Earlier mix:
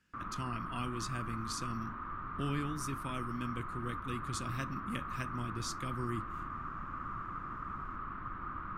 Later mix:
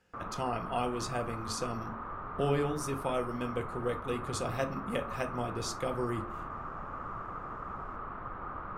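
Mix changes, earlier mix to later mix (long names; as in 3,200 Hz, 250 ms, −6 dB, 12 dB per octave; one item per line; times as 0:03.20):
speech: send +11.0 dB
master: add flat-topped bell 600 Hz +14 dB 1.3 octaves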